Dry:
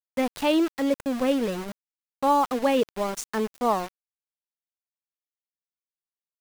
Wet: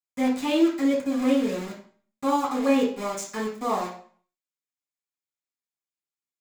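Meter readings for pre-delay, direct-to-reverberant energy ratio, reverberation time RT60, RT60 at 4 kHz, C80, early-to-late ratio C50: 3 ms, -9.0 dB, 0.50 s, 0.40 s, 11.0 dB, 6.5 dB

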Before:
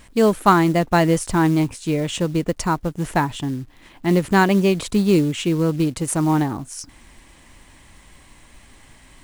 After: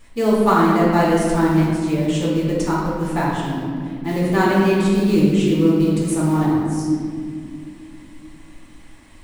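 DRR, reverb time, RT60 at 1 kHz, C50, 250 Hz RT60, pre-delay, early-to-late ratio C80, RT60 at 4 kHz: -7.0 dB, 2.3 s, 1.8 s, -1.0 dB, 4.2 s, 3 ms, 1.5 dB, 1.2 s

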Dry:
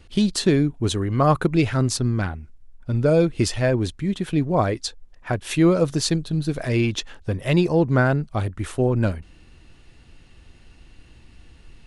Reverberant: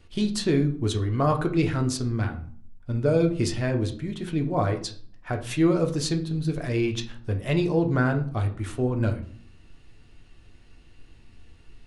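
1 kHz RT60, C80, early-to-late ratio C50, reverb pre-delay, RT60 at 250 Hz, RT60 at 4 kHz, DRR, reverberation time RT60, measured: 0.50 s, 16.5 dB, 12.5 dB, 3 ms, 0.75 s, 0.35 s, 4.0 dB, 0.50 s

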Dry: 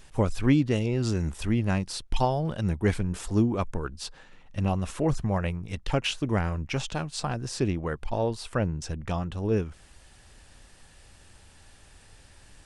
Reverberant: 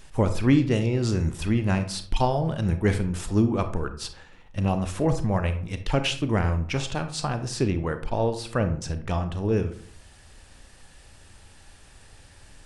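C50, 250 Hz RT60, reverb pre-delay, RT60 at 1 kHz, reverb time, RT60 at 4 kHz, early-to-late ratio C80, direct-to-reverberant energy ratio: 11.0 dB, 0.70 s, 29 ms, 0.50 s, 0.55 s, 0.30 s, 15.0 dB, 8.5 dB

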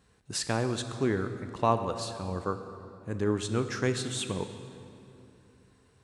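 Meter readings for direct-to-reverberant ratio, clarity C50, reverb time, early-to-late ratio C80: 8.5 dB, 9.5 dB, 2.8 s, 10.0 dB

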